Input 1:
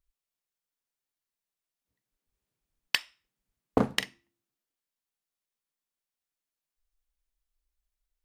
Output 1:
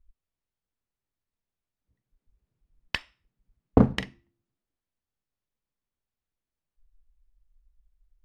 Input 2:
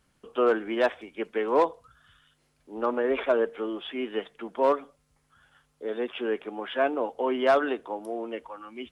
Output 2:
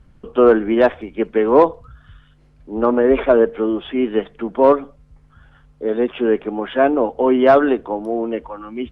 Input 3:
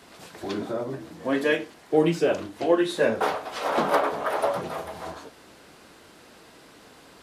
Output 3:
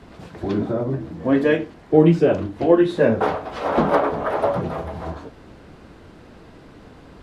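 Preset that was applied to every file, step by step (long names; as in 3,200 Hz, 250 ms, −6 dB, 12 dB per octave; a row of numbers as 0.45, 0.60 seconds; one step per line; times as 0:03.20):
RIAA equalisation playback
normalise the peak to −2 dBFS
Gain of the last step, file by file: +0.5, +8.0, +2.5 decibels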